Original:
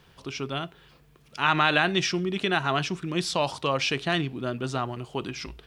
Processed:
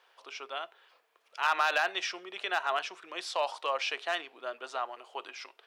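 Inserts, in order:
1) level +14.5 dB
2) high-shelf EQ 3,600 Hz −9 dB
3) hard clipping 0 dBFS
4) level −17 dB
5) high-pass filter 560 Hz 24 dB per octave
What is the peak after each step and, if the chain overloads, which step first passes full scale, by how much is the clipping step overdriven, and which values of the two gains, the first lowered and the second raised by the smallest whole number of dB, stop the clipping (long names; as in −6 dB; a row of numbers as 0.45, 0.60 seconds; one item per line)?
+9.5, +7.5, 0.0, −17.0, −14.0 dBFS
step 1, 7.5 dB
step 1 +6.5 dB, step 4 −9 dB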